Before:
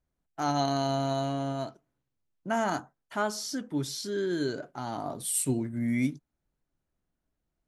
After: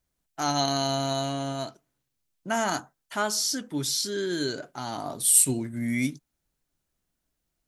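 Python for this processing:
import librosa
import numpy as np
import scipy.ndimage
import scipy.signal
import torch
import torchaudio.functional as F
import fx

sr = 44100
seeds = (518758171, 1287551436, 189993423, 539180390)

y = fx.high_shelf(x, sr, hz=2300.0, db=11.5)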